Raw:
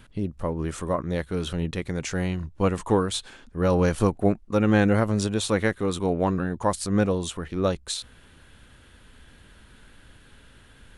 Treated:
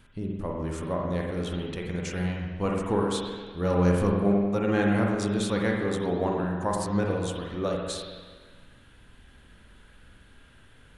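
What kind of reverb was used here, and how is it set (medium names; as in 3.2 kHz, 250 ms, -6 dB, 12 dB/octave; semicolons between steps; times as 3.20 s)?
spring tank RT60 1.5 s, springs 45/50 ms, chirp 80 ms, DRR -1 dB; trim -6 dB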